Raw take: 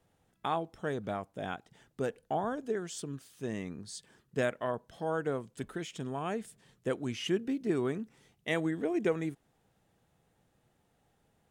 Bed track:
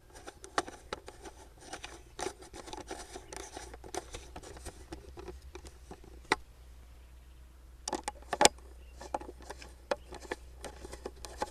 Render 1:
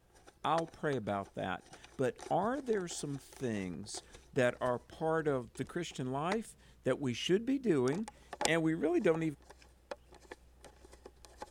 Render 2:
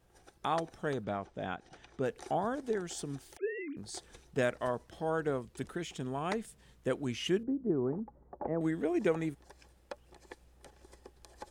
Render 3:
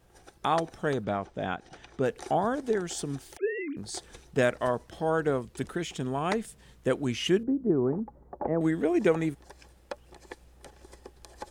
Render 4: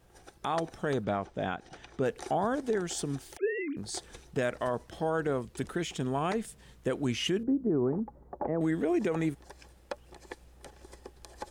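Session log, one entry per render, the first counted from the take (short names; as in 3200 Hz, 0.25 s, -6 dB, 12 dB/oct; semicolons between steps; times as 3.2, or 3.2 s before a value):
add bed track -11 dB
1.04–2.06 air absorption 89 m; 3.37–3.77 sine-wave speech; 7.43–8.61 Bessel low-pass 750 Hz, order 6
gain +6 dB
limiter -20.5 dBFS, peak gain reduction 9.5 dB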